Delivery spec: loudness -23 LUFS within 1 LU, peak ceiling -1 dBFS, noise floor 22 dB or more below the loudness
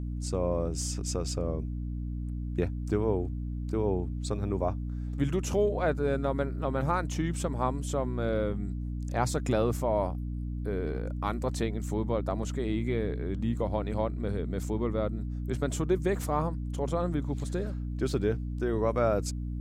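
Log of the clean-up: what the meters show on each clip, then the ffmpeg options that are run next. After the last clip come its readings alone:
hum 60 Hz; harmonics up to 300 Hz; hum level -31 dBFS; loudness -31.0 LUFS; peak -12.5 dBFS; loudness target -23.0 LUFS
-> -af "bandreject=f=60:t=h:w=6,bandreject=f=120:t=h:w=6,bandreject=f=180:t=h:w=6,bandreject=f=240:t=h:w=6,bandreject=f=300:t=h:w=6"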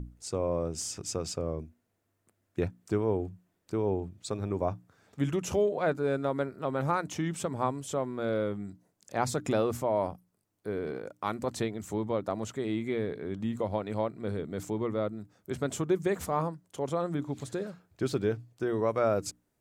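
hum none; loudness -32.5 LUFS; peak -13.5 dBFS; loudness target -23.0 LUFS
-> -af "volume=9.5dB"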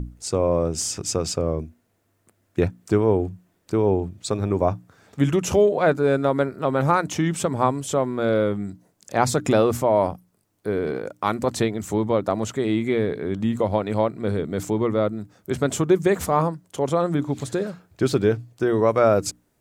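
loudness -23.0 LUFS; peak -4.0 dBFS; noise floor -68 dBFS

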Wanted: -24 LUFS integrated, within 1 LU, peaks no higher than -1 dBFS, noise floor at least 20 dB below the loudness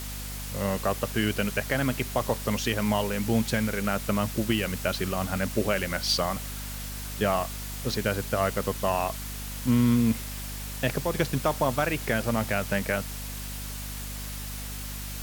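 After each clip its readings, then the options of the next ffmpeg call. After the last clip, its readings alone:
hum 50 Hz; harmonics up to 250 Hz; hum level -35 dBFS; noise floor -36 dBFS; noise floor target -48 dBFS; loudness -28.0 LUFS; peak -11.5 dBFS; loudness target -24.0 LUFS
-> -af "bandreject=f=50:t=h:w=4,bandreject=f=100:t=h:w=4,bandreject=f=150:t=h:w=4,bandreject=f=200:t=h:w=4,bandreject=f=250:t=h:w=4"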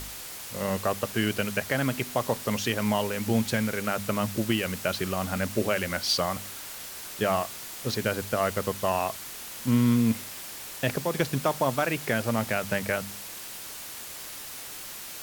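hum none; noise floor -40 dBFS; noise floor target -49 dBFS
-> -af "afftdn=nr=9:nf=-40"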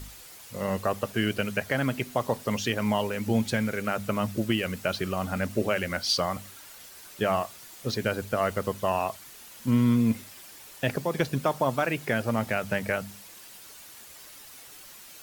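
noise floor -48 dBFS; loudness -28.0 LUFS; peak -12.0 dBFS; loudness target -24.0 LUFS
-> -af "volume=4dB"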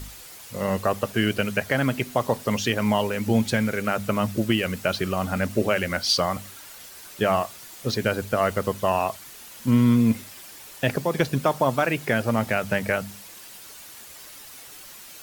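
loudness -24.0 LUFS; peak -8.0 dBFS; noise floor -44 dBFS

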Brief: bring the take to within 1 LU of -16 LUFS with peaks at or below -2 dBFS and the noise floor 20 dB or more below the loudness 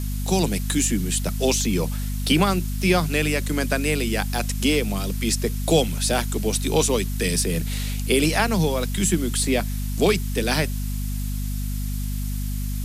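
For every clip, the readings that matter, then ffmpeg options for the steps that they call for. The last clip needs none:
hum 50 Hz; harmonics up to 250 Hz; hum level -24 dBFS; noise floor -26 dBFS; noise floor target -43 dBFS; loudness -23.0 LUFS; peak -5.5 dBFS; loudness target -16.0 LUFS
-> -af "bandreject=f=50:t=h:w=6,bandreject=f=100:t=h:w=6,bandreject=f=150:t=h:w=6,bandreject=f=200:t=h:w=6,bandreject=f=250:t=h:w=6"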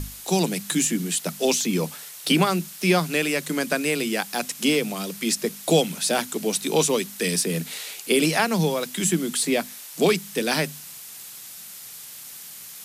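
hum none; noise floor -41 dBFS; noise floor target -44 dBFS
-> -af "afftdn=nr=6:nf=-41"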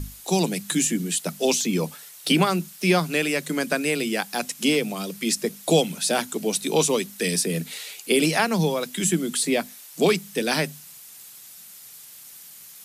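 noise floor -45 dBFS; loudness -23.5 LUFS; peak -6.5 dBFS; loudness target -16.0 LUFS
-> -af "volume=7.5dB,alimiter=limit=-2dB:level=0:latency=1"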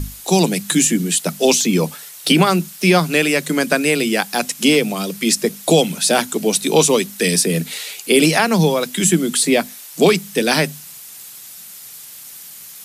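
loudness -16.5 LUFS; peak -2.0 dBFS; noise floor -37 dBFS

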